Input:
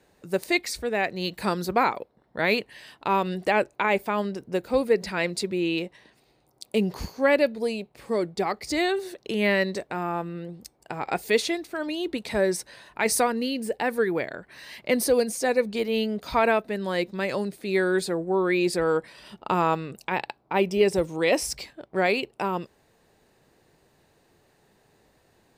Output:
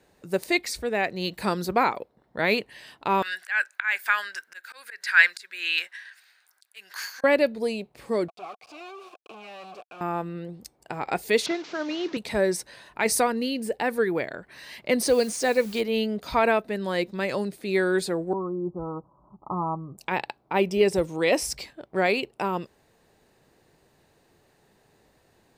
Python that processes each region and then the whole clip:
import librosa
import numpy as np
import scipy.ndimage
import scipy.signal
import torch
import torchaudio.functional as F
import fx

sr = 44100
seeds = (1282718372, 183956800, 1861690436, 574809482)

y = fx.chain(x, sr, fx.high_shelf(hz=2800.0, db=8.0),
    fx.auto_swell(attack_ms=295.0),
    fx.highpass_res(hz=1600.0, q=8.5), at=(3.22, 7.24))
y = fx.chain(y, sr, fx.peak_eq(hz=780.0, db=-11.5, octaves=1.2),
    fx.quant_companded(bits=2),
    fx.vowel_filter(vowel='a'), at=(8.28, 10.01))
y = fx.chain(y, sr, fx.delta_mod(bps=32000, step_db=-37.0),
    fx.highpass(hz=160.0, slope=24), at=(11.46, 12.17))
y = fx.chain(y, sr, fx.bessel_lowpass(hz=6800.0, order=6),
    fx.high_shelf(hz=2900.0, db=6.5),
    fx.quant_dither(seeds[0], bits=8, dither='triangular'), at=(15.02, 15.81))
y = fx.chain(y, sr, fx.steep_lowpass(hz=1200.0, slope=96),
    fx.peak_eq(hz=480.0, db=-11.0, octaves=1.1),
    fx.notch_comb(f0_hz=230.0), at=(18.33, 19.98))